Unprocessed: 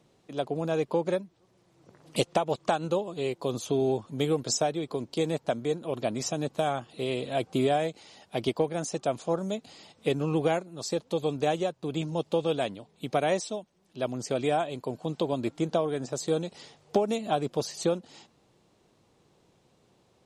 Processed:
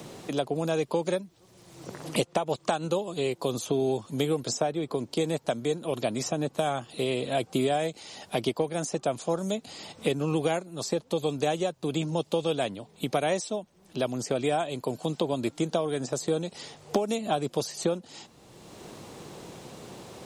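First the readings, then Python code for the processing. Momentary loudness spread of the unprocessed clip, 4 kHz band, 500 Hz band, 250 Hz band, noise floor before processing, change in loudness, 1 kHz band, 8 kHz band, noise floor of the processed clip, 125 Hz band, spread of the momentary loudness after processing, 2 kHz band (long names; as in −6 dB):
7 LU, +2.0 dB, 0.0 dB, +1.0 dB, −66 dBFS, +0.5 dB, −0.5 dB, +1.0 dB, −58 dBFS, +0.5 dB, 16 LU, +1.0 dB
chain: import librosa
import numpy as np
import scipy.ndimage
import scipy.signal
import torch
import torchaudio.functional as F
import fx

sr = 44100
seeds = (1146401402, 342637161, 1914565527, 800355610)

y = fx.high_shelf(x, sr, hz=6800.0, db=8.5)
y = fx.band_squash(y, sr, depth_pct=70)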